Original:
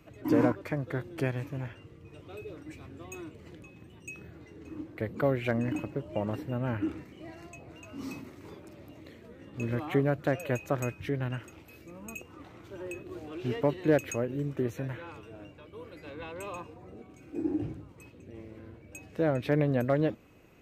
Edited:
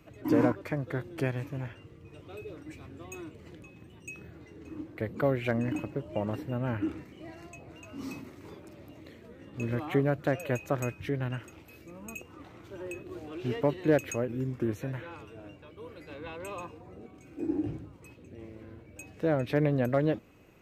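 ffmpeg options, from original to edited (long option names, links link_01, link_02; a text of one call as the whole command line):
ffmpeg -i in.wav -filter_complex "[0:a]asplit=3[link_01][link_02][link_03];[link_01]atrim=end=14.284[link_04];[link_02]atrim=start=14.28:end=14.71,asetpts=PTS-STARTPTS,asetrate=40131,aresample=44100,atrim=end_sample=20838,asetpts=PTS-STARTPTS[link_05];[link_03]atrim=start=14.706[link_06];[link_04][link_05]acrossfade=duration=0.004:curve1=hsin:curve2=hsin[link_07];[link_07][link_06]acrossfade=duration=0.004:curve1=hsin:curve2=hsin" out.wav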